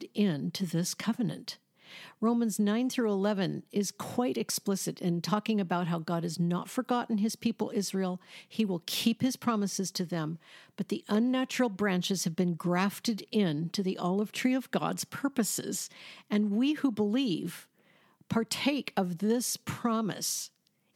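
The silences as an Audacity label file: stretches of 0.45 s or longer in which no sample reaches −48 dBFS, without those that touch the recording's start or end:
17.640000	18.210000	silence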